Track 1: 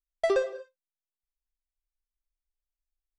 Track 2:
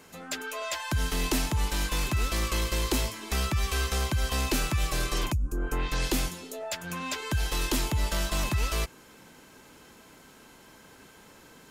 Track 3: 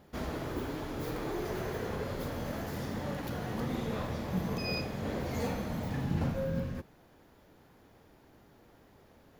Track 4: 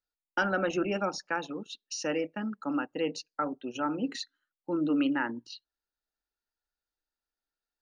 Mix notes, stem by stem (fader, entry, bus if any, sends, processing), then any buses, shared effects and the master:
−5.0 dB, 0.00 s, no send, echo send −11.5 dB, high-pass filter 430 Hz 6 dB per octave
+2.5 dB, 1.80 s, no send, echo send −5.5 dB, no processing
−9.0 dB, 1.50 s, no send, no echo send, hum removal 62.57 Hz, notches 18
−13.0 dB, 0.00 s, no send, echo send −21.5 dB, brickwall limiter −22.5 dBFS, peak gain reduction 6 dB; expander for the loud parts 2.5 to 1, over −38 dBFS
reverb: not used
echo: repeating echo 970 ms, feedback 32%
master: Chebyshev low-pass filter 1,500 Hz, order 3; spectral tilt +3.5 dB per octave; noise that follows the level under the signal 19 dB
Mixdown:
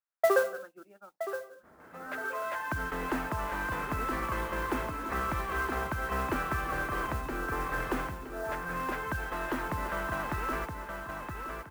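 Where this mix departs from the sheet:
stem 1 −5.0 dB → +6.5 dB
stem 3 −9.0 dB → −15.5 dB
stem 4: missing brickwall limiter −22.5 dBFS, peak gain reduction 6 dB

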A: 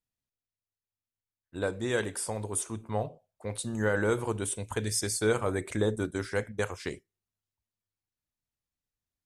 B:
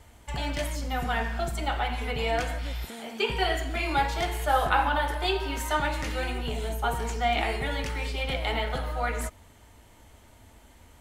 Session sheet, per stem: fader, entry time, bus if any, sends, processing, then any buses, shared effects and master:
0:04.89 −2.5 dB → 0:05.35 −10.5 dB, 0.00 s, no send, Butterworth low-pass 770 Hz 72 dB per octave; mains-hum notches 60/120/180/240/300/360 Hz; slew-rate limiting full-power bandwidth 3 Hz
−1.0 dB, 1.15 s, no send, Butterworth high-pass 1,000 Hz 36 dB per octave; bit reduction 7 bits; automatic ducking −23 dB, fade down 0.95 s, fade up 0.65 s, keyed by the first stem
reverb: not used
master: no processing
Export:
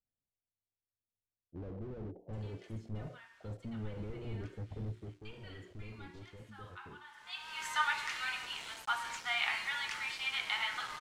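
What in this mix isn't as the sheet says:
stem B: entry 1.15 s → 2.05 s
master: extra high-frequency loss of the air 70 metres

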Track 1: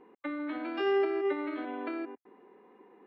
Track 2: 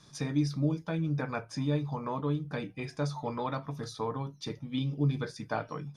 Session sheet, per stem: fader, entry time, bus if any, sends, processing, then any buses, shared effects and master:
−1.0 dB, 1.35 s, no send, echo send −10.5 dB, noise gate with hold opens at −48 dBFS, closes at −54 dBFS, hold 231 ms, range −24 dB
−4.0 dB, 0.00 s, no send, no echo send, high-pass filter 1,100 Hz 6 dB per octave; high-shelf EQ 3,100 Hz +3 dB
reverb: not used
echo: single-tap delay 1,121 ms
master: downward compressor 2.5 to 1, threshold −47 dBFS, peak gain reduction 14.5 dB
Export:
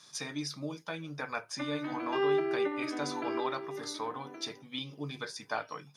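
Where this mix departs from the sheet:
stem 2 −4.0 dB → +3.0 dB
master: missing downward compressor 2.5 to 1, threshold −47 dBFS, peak gain reduction 14.5 dB

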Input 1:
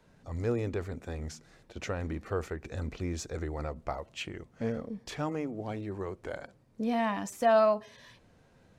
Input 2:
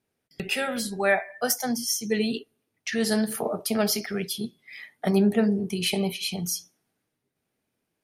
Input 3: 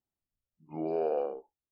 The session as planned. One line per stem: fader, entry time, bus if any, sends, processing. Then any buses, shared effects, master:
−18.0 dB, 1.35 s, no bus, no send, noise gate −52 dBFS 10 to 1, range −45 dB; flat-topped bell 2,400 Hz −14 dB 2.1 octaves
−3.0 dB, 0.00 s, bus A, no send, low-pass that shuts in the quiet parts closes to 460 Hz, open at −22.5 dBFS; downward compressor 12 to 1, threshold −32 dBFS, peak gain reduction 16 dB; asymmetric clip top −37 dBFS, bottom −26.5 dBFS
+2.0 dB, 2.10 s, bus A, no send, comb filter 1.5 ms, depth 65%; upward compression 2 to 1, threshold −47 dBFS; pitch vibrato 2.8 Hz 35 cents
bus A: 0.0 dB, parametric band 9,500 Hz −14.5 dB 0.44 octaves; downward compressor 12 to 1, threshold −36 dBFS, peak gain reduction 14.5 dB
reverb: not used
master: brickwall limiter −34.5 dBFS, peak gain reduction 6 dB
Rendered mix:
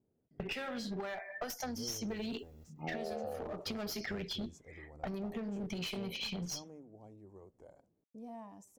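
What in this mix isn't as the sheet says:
stem 2 −3.0 dB → +3.5 dB
master: missing brickwall limiter −34.5 dBFS, peak gain reduction 6 dB

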